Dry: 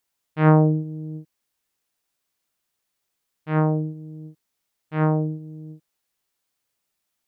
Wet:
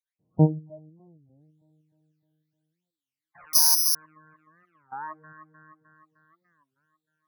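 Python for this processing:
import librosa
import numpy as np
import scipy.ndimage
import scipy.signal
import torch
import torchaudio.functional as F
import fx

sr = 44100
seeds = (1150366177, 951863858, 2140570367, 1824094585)

p1 = fx.spec_steps(x, sr, hold_ms=200)
p2 = fx.phaser_stages(p1, sr, stages=12, low_hz=120.0, high_hz=2100.0, hz=0.75, feedback_pct=40)
p3 = fx.spec_gate(p2, sr, threshold_db=-25, keep='strong')
p4 = fx.high_shelf(p3, sr, hz=2400.0, db=-11.0)
p5 = p4 + fx.echo_feedback(p4, sr, ms=306, feedback_pct=57, wet_db=-8.0, dry=0)
p6 = fx.resample_bad(p5, sr, factor=8, down='none', up='zero_stuff', at=(3.53, 3.95))
p7 = fx.noise_reduce_blind(p6, sr, reduce_db=27)
y = fx.record_warp(p7, sr, rpm=33.33, depth_cents=250.0)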